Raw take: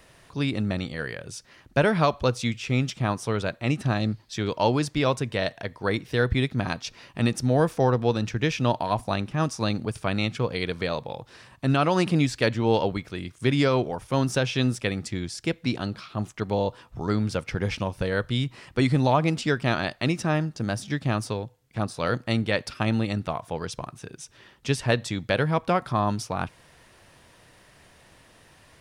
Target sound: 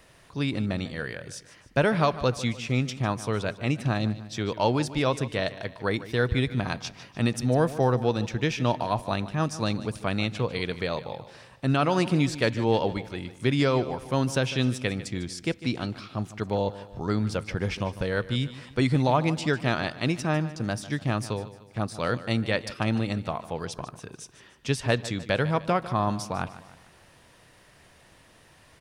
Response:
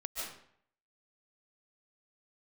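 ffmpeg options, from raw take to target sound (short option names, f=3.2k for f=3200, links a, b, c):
-af "aecho=1:1:150|300|450|600:0.168|0.0755|0.034|0.0153,volume=-1.5dB"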